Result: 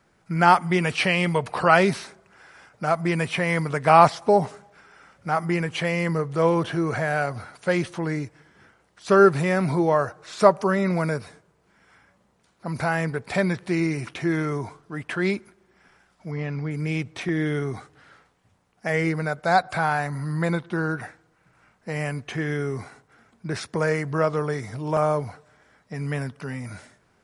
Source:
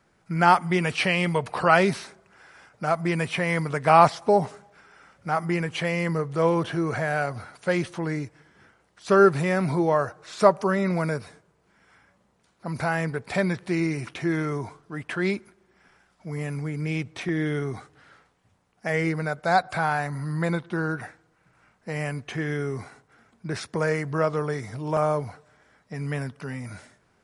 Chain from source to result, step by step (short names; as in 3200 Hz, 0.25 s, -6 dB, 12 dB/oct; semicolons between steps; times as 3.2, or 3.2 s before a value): 16.31–16.71 steep low-pass 5200 Hz 36 dB/oct; gain +1.5 dB